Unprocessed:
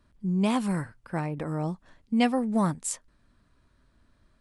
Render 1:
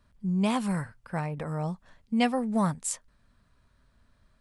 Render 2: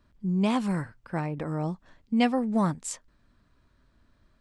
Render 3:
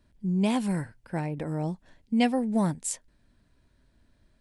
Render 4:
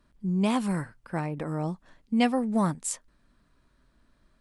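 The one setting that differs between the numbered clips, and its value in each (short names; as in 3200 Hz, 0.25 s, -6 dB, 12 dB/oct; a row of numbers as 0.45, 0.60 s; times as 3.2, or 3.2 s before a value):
bell, frequency: 320, 10000, 1200, 89 Hz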